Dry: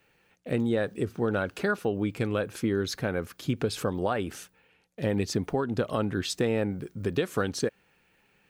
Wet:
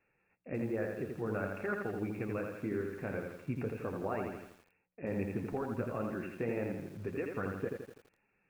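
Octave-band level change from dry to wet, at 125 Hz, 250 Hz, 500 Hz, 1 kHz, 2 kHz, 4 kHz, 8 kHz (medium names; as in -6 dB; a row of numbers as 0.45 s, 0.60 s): -9.0 dB, -8.0 dB, -8.0 dB, -8.0 dB, -8.5 dB, under -25 dB, under -20 dB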